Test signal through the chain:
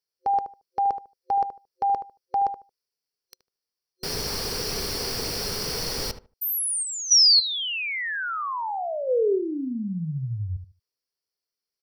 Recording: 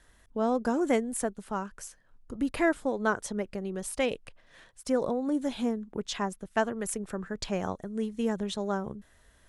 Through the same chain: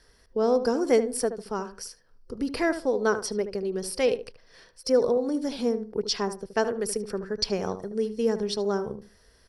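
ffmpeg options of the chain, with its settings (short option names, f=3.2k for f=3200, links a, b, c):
-filter_complex "[0:a]superequalizer=7b=2.51:14b=3.98:15b=0.562,asplit=2[a][b];[b]adelay=75,lowpass=f=1.6k:p=1,volume=-10dB,asplit=2[c][d];[d]adelay=75,lowpass=f=1.6k:p=1,volume=0.21,asplit=2[e][f];[f]adelay=75,lowpass=f=1.6k:p=1,volume=0.21[g];[c][e][g]amix=inputs=3:normalize=0[h];[a][h]amix=inputs=2:normalize=0,adynamicequalizer=threshold=0.00708:dfrequency=4500:dqfactor=0.7:tfrequency=4500:tqfactor=0.7:attack=5:release=100:ratio=0.375:range=1.5:mode=boostabove:tftype=highshelf"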